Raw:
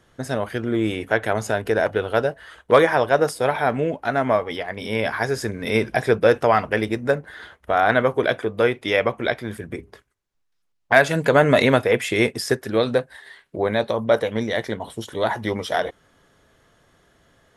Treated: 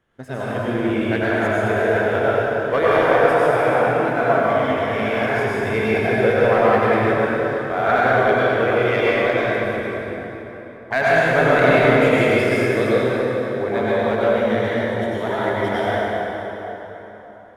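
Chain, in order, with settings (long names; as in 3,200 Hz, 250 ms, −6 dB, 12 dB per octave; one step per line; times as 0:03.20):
high shelf with overshoot 3,500 Hz −7 dB, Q 1.5
leveller curve on the samples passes 1
dense smooth reverb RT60 4 s, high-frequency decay 0.65×, pre-delay 80 ms, DRR −9 dB
level −10 dB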